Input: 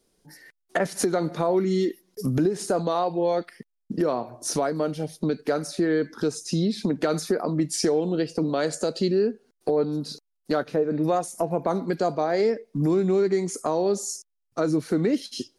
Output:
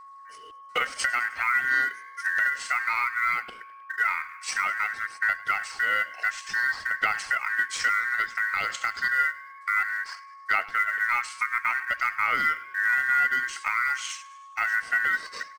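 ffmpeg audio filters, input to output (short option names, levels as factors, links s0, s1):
-filter_complex "[0:a]asetrate=30296,aresample=44100,atempo=1.45565,acrusher=bits=7:mode=log:mix=0:aa=0.000001,aeval=exprs='val(0)*sin(2*PI*1700*n/s)':c=same,aphaser=in_gain=1:out_gain=1:delay=4.2:decay=0.31:speed=0.57:type=sinusoidal,aeval=exprs='val(0)+0.00631*sin(2*PI*1100*n/s)':c=same,asplit=6[s0][s1][s2][s3][s4][s5];[s1]adelay=103,afreqshift=56,volume=0.1[s6];[s2]adelay=206,afreqshift=112,volume=0.0569[s7];[s3]adelay=309,afreqshift=168,volume=0.0324[s8];[s4]adelay=412,afreqshift=224,volume=0.0186[s9];[s5]adelay=515,afreqshift=280,volume=0.0106[s10];[s0][s6][s7][s8][s9][s10]amix=inputs=6:normalize=0"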